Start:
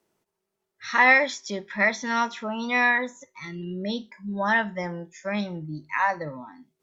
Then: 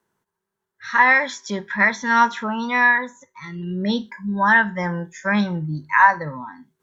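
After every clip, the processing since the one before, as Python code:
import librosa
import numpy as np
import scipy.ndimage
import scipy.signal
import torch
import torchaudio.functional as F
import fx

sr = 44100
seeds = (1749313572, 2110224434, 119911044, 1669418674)

y = fx.peak_eq(x, sr, hz=110.0, db=4.5, octaves=2.5)
y = fx.rider(y, sr, range_db=4, speed_s=0.5)
y = fx.graphic_eq_31(y, sr, hz=(315, 630, 1000, 1600, 2500, 5000), db=(-6, -6, 8, 10, -4, -4))
y = F.gain(torch.from_numpy(y), 2.5).numpy()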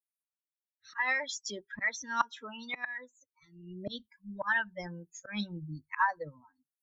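y = fx.bin_expand(x, sr, power=2.0)
y = fx.auto_swell(y, sr, attack_ms=167.0)
y = fx.hpss(y, sr, part='harmonic', gain_db=-13)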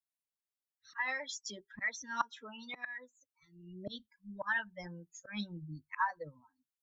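y = fx.filter_lfo_notch(x, sr, shape='sine', hz=3.7, low_hz=400.0, high_hz=2600.0, q=2.1)
y = F.gain(torch.from_numpy(y), -4.0).numpy()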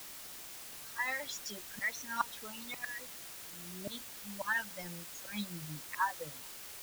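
y = fx.quant_dither(x, sr, seeds[0], bits=8, dither='triangular')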